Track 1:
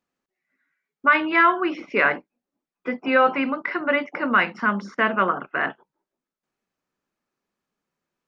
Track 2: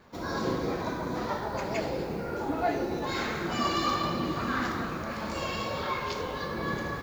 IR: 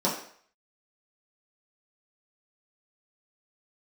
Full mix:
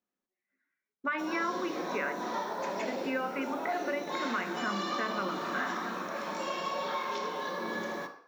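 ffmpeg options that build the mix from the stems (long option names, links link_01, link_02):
-filter_complex "[0:a]volume=-10.5dB,asplit=2[link_01][link_02];[link_02]volume=-18.5dB[link_03];[1:a]highpass=frequency=850:poles=1,adelay=1050,volume=-4dB,asplit=2[link_04][link_05];[link_05]volume=-8.5dB[link_06];[2:a]atrim=start_sample=2205[link_07];[link_03][link_06]amix=inputs=2:normalize=0[link_08];[link_08][link_07]afir=irnorm=-1:irlink=0[link_09];[link_01][link_04][link_09]amix=inputs=3:normalize=0,acrossover=split=2000|5200[link_10][link_11][link_12];[link_10]acompressor=threshold=-31dB:ratio=4[link_13];[link_11]acompressor=threshold=-42dB:ratio=4[link_14];[link_12]acompressor=threshold=-55dB:ratio=4[link_15];[link_13][link_14][link_15]amix=inputs=3:normalize=0"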